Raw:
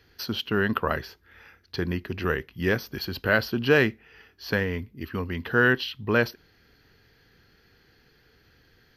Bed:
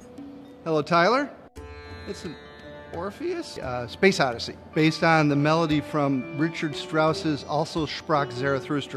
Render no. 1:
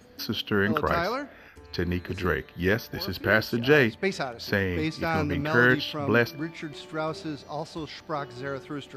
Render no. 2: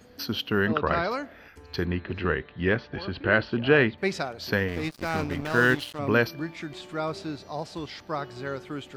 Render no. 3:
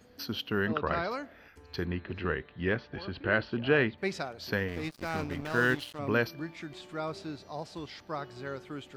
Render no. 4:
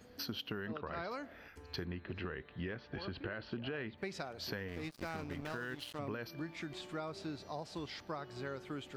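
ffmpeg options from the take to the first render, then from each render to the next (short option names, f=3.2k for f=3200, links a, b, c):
-filter_complex "[1:a]volume=-8.5dB[a];[0:a][a]amix=inputs=2:normalize=0"
-filter_complex "[0:a]asplit=3[a][b][c];[a]afade=t=out:st=0.66:d=0.02[d];[b]lowpass=f=4.4k:w=0.5412,lowpass=f=4.4k:w=1.3066,afade=t=in:st=0.66:d=0.02,afade=t=out:st=1.1:d=0.02[e];[c]afade=t=in:st=1.1:d=0.02[f];[d][e][f]amix=inputs=3:normalize=0,asettb=1/sr,asplit=3[g][h][i];[g]atrim=end=1.854[j];[h]atrim=start=1.85:end=3.98,asetpts=PTS-STARTPTS,afade=t=in:d=0.004:c=qsin,afade=t=out:st=2.126:d=0.004:c=qsin,lowpass=f=3.6k:w=0.5412,lowpass=f=3.6k:w=1.3066[k];[i]atrim=start=3.976[l];[j][k]acrossfade=d=0.004:c1=hsin:c2=qsin[m];[m][l]acrossfade=d=0.004:c1=qsin:c2=hsin,asettb=1/sr,asplit=3[n][o][p];[n]atrim=end=4.684[q];[o]atrim=start=4.68:end=5.99,asetpts=PTS-STARTPTS,afade=t=in:d=0.004:c=qsin,afade=t=out:st=1.306:d=0.004:c=qsin,aeval=exprs='sgn(val(0))*max(abs(val(0))-0.0168,0)':c=same[r];[p]atrim=start=5.986[s];[q][r]acrossfade=d=0.004:c1=hsin:c2=qsin[t];[t][s]acrossfade=d=0.004:c1=qsin:c2=hsin"
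-af "volume=-5.5dB"
-af "alimiter=limit=-21dB:level=0:latency=1:release=97,acompressor=threshold=-38dB:ratio=6"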